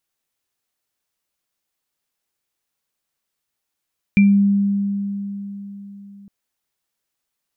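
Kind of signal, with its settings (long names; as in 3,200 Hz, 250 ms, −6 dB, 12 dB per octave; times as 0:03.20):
inharmonic partials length 2.11 s, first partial 200 Hz, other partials 2,360 Hz, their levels −7.5 dB, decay 3.96 s, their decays 0.25 s, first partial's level −8 dB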